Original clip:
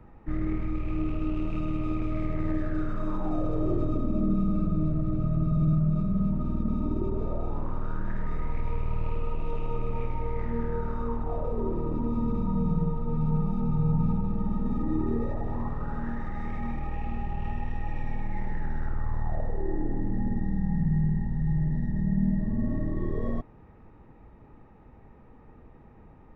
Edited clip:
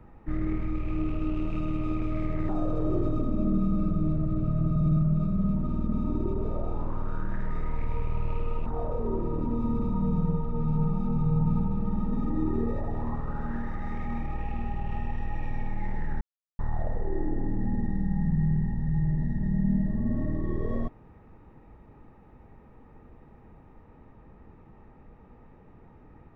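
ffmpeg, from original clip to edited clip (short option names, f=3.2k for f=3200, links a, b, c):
-filter_complex "[0:a]asplit=5[a][b][c][d][e];[a]atrim=end=2.492[f];[b]atrim=start=3.248:end=9.422[g];[c]atrim=start=11.188:end=18.74,asetpts=PTS-STARTPTS,afade=t=out:st=7.548:d=0.004:c=hsin[h];[d]atrim=start=18.74:end=19.12,asetpts=PTS-STARTPTS,volume=0[i];[e]atrim=start=19.12,asetpts=PTS-STARTPTS,afade=t=in:d=0.004:c=hsin[j];[f][g]acrossfade=d=0.004:c1=hsin:c2=hsin[k];[h][i][j]concat=n=3:v=0:a=1[l];[k][l]acrossfade=d=0.004:c1=hsin:c2=hsin"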